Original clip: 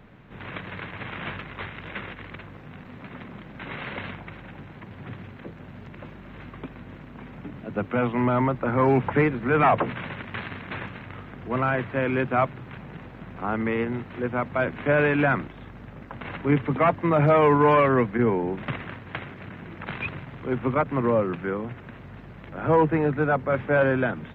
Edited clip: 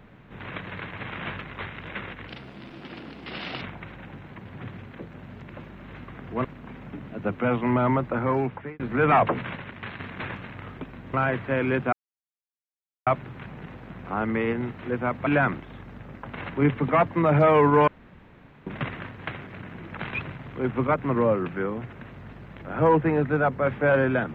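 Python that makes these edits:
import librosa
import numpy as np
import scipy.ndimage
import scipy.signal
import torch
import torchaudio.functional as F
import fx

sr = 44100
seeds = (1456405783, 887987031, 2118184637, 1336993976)

y = fx.edit(x, sr, fx.speed_span(start_s=2.28, length_s=1.79, speed=1.34),
    fx.swap(start_s=6.6, length_s=0.36, other_s=11.29, other_length_s=0.3),
    fx.fade_out_span(start_s=8.57, length_s=0.74),
    fx.clip_gain(start_s=10.07, length_s=0.44, db=-3.5),
    fx.insert_silence(at_s=12.38, length_s=1.14),
    fx.cut(start_s=14.58, length_s=0.56),
    fx.room_tone_fill(start_s=17.75, length_s=0.79), tone=tone)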